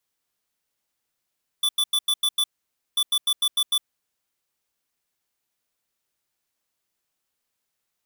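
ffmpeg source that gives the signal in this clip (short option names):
-f lavfi -i "aevalsrc='0.0891*(2*lt(mod(3480*t,1),0.5)-1)*clip(min(mod(mod(t,1.34),0.15),0.06-mod(mod(t,1.34),0.15))/0.005,0,1)*lt(mod(t,1.34),0.9)':d=2.68:s=44100"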